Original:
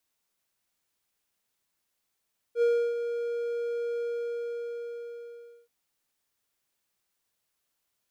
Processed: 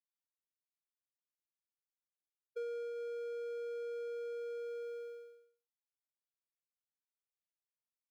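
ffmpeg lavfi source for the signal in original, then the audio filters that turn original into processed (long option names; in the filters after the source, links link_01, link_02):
-f lavfi -i "aevalsrc='0.133*(1-4*abs(mod(472*t+0.25,1)-0.5))':duration=3.13:sample_rate=44100,afade=type=in:duration=0.07,afade=type=out:start_time=0.07:duration=0.32:silence=0.355,afade=type=out:start_time=1.45:duration=1.68"
-af "agate=range=-33dB:threshold=-36dB:ratio=3:detection=peak,highpass=420,acompressor=threshold=-41dB:ratio=6"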